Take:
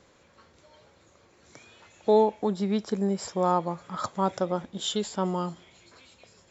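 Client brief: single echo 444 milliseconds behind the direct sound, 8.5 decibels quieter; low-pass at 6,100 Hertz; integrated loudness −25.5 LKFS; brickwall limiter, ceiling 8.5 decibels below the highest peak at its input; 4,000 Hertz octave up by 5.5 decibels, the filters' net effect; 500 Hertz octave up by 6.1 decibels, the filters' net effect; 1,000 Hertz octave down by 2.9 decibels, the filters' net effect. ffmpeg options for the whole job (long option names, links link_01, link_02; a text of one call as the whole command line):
ffmpeg -i in.wav -af "lowpass=6100,equalizer=frequency=500:width_type=o:gain=9,equalizer=frequency=1000:width_type=o:gain=-7.5,equalizer=frequency=4000:width_type=o:gain=7.5,alimiter=limit=-15dB:level=0:latency=1,aecho=1:1:444:0.376,volume=1.5dB" out.wav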